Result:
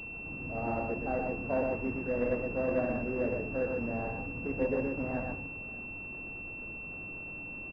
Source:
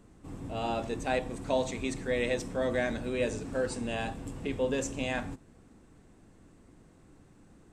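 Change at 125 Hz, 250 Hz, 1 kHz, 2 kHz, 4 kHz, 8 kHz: −0.5 dB, +0.5 dB, −1.5 dB, +1.0 dB, below −20 dB, below −30 dB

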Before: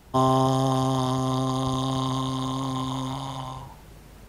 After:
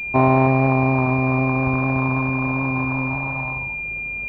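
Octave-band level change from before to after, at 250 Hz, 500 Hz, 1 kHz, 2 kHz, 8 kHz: +6.0 dB, +5.5 dB, +3.5 dB, +24.5 dB, below −25 dB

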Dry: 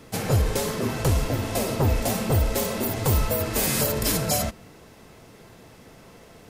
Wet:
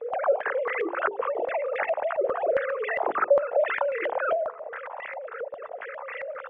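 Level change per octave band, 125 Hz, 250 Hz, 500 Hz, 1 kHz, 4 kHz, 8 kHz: below −35 dB, −15.0 dB, +4.0 dB, +3.5 dB, below −15 dB, below −40 dB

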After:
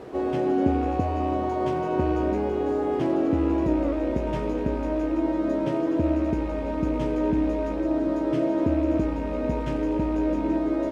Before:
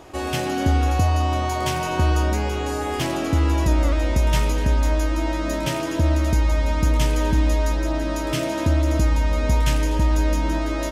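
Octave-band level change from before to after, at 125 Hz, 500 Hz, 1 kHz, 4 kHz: −11.0 dB, +1.5 dB, −4.5 dB, below −15 dB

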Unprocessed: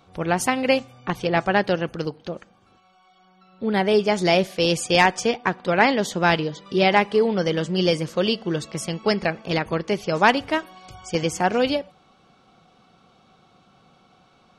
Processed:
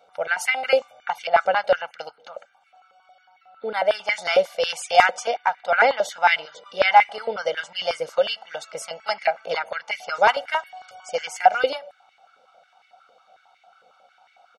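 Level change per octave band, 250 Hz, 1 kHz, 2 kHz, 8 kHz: −22.5, +3.0, +1.5, −4.0 decibels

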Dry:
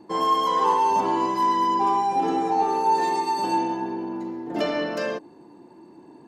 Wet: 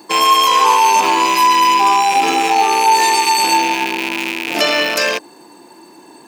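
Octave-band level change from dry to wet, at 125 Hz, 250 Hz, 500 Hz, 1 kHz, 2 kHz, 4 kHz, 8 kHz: can't be measured, +3.0 dB, +5.5 dB, +9.5 dB, +19.0 dB, +19.5 dB, +23.0 dB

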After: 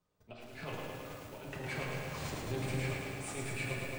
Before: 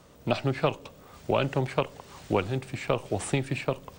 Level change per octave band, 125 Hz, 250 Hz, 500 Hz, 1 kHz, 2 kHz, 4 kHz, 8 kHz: −8.5, −11.0, −13.5, −12.5, −4.5, −8.0, −4.0 decibels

